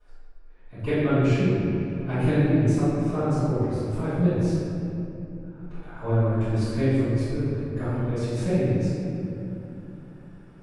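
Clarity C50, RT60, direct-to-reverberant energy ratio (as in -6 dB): -5.0 dB, 2.9 s, -20.5 dB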